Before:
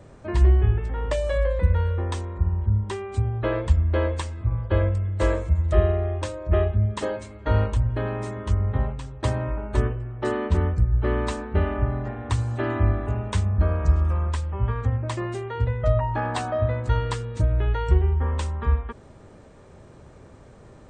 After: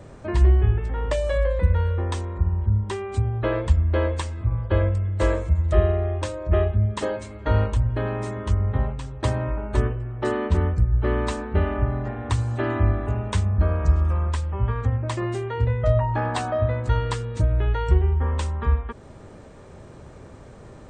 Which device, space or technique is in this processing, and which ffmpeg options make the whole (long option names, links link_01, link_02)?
parallel compression: -filter_complex "[0:a]asettb=1/sr,asplit=3[link_01][link_02][link_03];[link_01]atrim=end=15.204[link_04];[link_02]atrim=start=15.2:end=16.29,asetpts=PTS-STARTPTS,afade=type=in:duration=0.004:curve=qsin,afade=type=out:start_time=1.086:duration=0.004:curve=qsin,asplit=2[link_05][link_06];[link_06]adelay=26,volume=-10dB[link_07];[link_05][link_07]amix=inputs=2:normalize=0,atrim=end_sample=48069[link_08];[link_03]atrim=start=16.286[link_09];[link_04][link_08]acrossfade=duration=0.004:curve1=hsin:curve2=qsin[link_10];[link_10][link_09]acrossfade=duration=0.004:curve1=qsin:curve2=hsin,asplit=2[link_11][link_12];[link_12]acompressor=threshold=-36dB:ratio=6,volume=-4.5dB[link_13];[link_11][link_13]amix=inputs=2:normalize=0"